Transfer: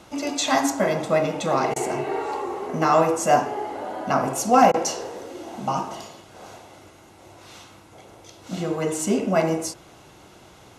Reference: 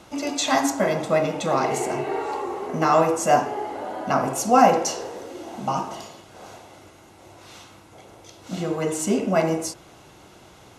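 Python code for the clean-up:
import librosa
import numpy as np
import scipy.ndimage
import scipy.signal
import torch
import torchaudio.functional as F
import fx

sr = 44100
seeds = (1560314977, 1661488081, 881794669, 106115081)

y = fx.fix_declip(x, sr, threshold_db=-5.5)
y = fx.fix_interpolate(y, sr, at_s=(1.74, 4.72), length_ms=19.0)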